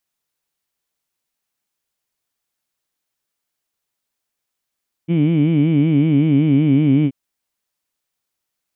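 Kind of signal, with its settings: formant-synthesis vowel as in heed, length 2.03 s, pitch 159 Hz, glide -2 st, vibrato depth 1.4 st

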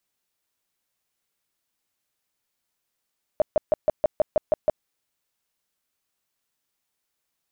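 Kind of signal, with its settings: tone bursts 615 Hz, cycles 11, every 0.16 s, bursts 9, -14.5 dBFS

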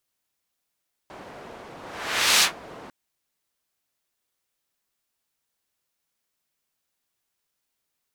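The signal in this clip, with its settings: whoosh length 1.80 s, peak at 1.32, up 0.67 s, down 0.13 s, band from 640 Hz, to 4400 Hz, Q 0.75, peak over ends 25 dB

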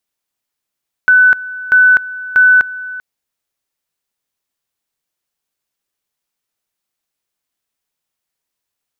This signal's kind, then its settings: two-level tone 1500 Hz -4.5 dBFS, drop 18 dB, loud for 0.25 s, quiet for 0.39 s, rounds 3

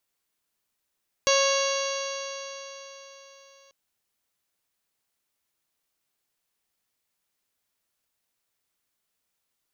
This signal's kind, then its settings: stretched partials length 2.44 s, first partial 547 Hz, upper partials -5/-11/-10.5/-6.5/-9/-10/-7/-17.5/-7/-7 dB, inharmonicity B 0.0012, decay 3.96 s, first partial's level -21 dB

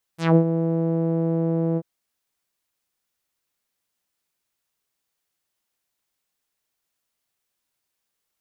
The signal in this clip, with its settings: synth note saw E3 12 dB/oct, low-pass 490 Hz, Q 1.9, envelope 5 oct, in 0.15 s, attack 0.177 s, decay 0.08 s, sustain -9 dB, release 0.05 s, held 1.59 s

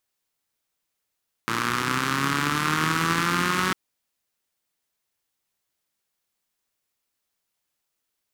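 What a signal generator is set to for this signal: four-cylinder engine model, changing speed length 2.25 s, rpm 3400, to 5600, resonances 170/270/1200 Hz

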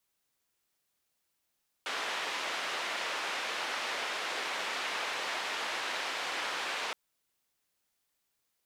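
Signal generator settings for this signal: noise band 490–2800 Hz, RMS -35.5 dBFS 5.07 s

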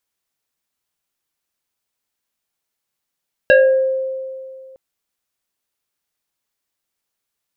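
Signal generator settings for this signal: FM tone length 1.26 s, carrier 527 Hz, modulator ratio 2.1, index 1.5, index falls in 0.62 s exponential, decay 2.27 s, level -5.5 dB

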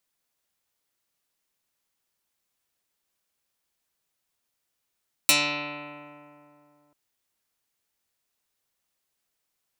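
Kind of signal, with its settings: plucked string D3, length 1.64 s, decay 2.80 s, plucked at 0.09, dark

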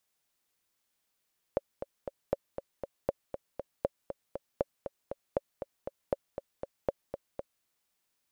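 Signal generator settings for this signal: metronome 237 bpm, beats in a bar 3, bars 8, 556 Hz, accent 9 dB -14 dBFS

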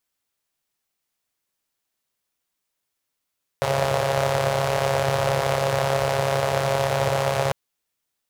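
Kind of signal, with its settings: four-cylinder engine model, steady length 3.90 s, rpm 4100, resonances 120/560 Hz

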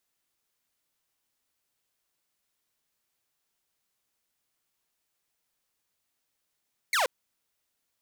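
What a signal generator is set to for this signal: laser zap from 2300 Hz, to 460 Hz, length 0.13 s saw, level -20 dB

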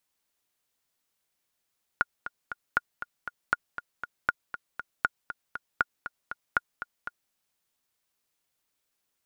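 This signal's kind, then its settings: metronome 237 bpm, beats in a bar 3, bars 7, 1430 Hz, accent 12 dB -9 dBFS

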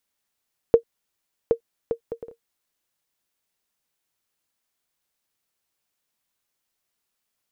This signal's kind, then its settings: bouncing ball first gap 0.77 s, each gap 0.52, 463 Hz, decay 94 ms -3.5 dBFS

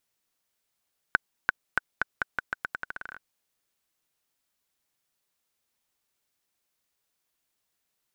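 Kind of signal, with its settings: bouncing ball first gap 0.34 s, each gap 0.84, 1510 Hz, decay 18 ms -5.5 dBFS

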